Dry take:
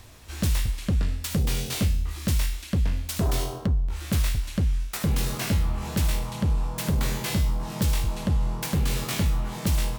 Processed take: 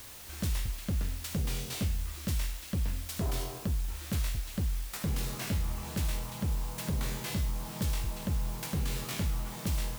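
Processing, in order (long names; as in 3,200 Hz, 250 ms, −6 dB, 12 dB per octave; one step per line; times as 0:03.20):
background noise white −40 dBFS
level −8 dB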